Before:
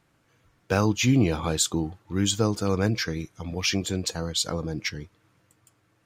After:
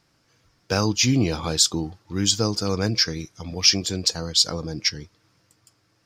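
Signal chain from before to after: bell 5100 Hz +14 dB 0.58 oct

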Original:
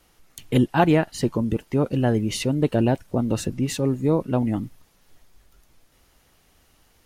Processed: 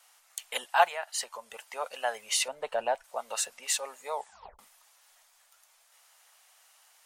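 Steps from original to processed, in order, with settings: 0.85–1.54 compressor 6:1, threshold -22 dBFS, peak gain reduction 9 dB; 2.48–3.04 tilt -3.5 dB/oct; 4.12 tape stop 0.47 s; inverse Chebyshev high-pass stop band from 340 Hz, stop band 40 dB; bell 8100 Hz +6.5 dB 0.61 oct

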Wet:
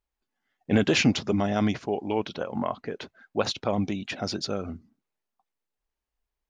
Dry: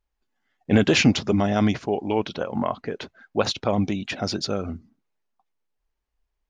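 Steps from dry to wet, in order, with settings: low shelf 60 Hz -6.5 dB; gain -3.5 dB

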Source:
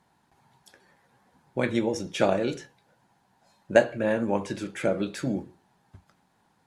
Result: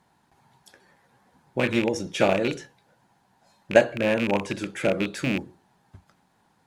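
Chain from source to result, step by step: rattling part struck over -30 dBFS, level -19 dBFS; gain +2 dB

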